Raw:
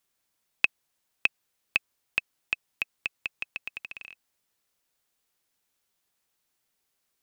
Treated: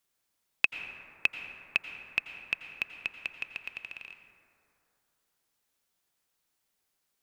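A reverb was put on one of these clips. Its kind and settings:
dense smooth reverb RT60 2.9 s, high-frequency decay 0.3×, pre-delay 75 ms, DRR 7 dB
level −2 dB

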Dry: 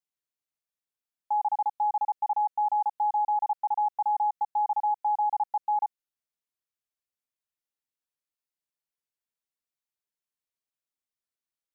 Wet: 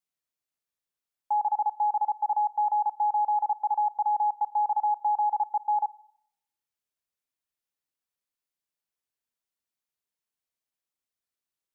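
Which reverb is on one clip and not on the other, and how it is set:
four-comb reverb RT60 0.79 s, combs from 27 ms, DRR 19.5 dB
level +1 dB

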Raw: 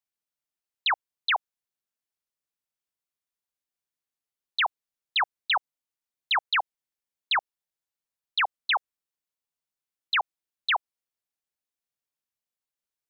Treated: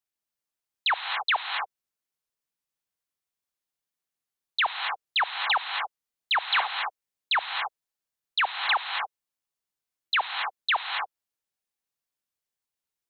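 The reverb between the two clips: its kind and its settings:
reverb whose tail is shaped and stops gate 300 ms rising, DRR 4 dB

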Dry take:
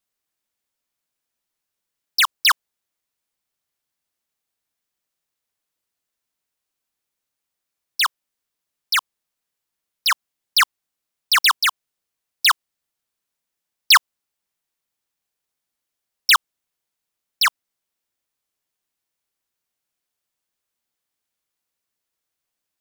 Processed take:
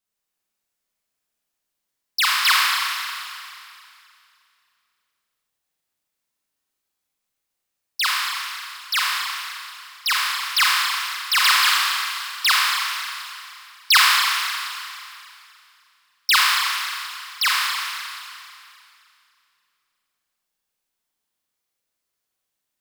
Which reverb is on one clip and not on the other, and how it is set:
four-comb reverb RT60 2.5 s, combs from 30 ms, DRR −4.5 dB
level −4 dB

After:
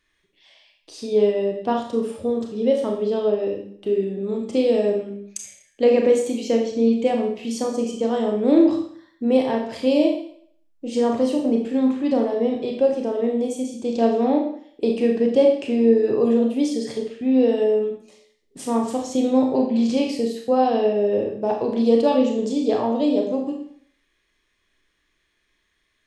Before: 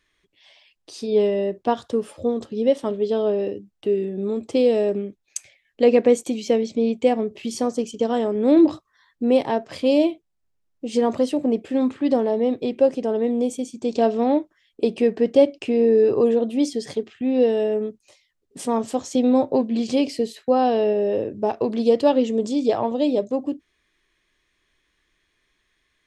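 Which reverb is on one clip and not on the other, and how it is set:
four-comb reverb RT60 0.59 s, combs from 27 ms, DRR 1.5 dB
level −2.5 dB

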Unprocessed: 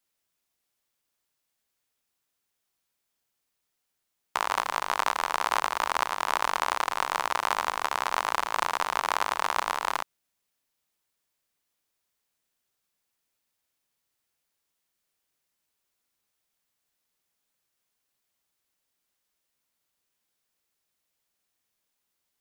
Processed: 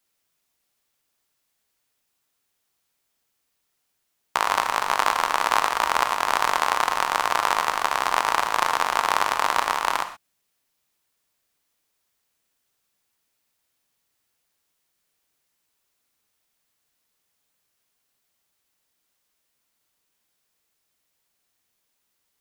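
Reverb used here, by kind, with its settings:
reverb whose tail is shaped and stops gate 150 ms flat, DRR 8.5 dB
level +5 dB

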